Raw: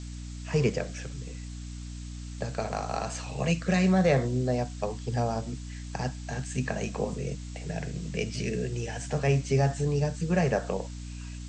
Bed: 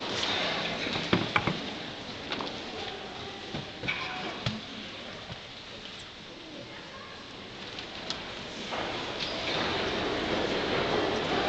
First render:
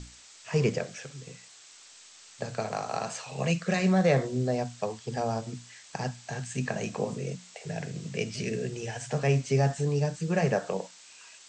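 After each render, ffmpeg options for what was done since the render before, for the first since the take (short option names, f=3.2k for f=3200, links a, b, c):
-af "bandreject=f=60:t=h:w=6,bandreject=f=120:t=h:w=6,bandreject=f=180:t=h:w=6,bandreject=f=240:t=h:w=6,bandreject=f=300:t=h:w=6"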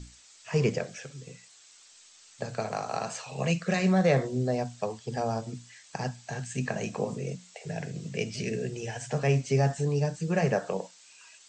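-af "afftdn=nr=6:nf=-53"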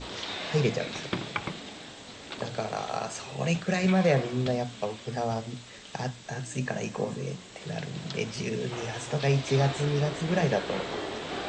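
-filter_complex "[1:a]volume=-6dB[a];[0:a][a]amix=inputs=2:normalize=0"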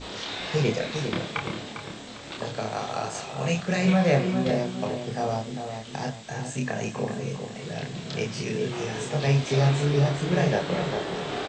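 -filter_complex "[0:a]asplit=2[a][b];[b]adelay=28,volume=-2.5dB[c];[a][c]amix=inputs=2:normalize=0,asplit=2[d][e];[e]adelay=401,lowpass=f=2k:p=1,volume=-7dB,asplit=2[f][g];[g]adelay=401,lowpass=f=2k:p=1,volume=0.36,asplit=2[h][i];[i]adelay=401,lowpass=f=2k:p=1,volume=0.36,asplit=2[j][k];[k]adelay=401,lowpass=f=2k:p=1,volume=0.36[l];[d][f][h][j][l]amix=inputs=5:normalize=0"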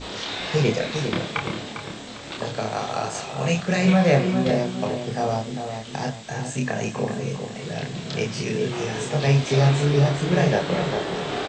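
-af "volume=3.5dB"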